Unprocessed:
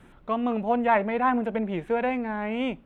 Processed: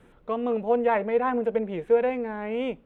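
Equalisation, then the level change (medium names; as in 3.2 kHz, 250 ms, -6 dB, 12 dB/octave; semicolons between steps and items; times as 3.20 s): peaking EQ 470 Hz +11 dB 0.33 oct; -4.0 dB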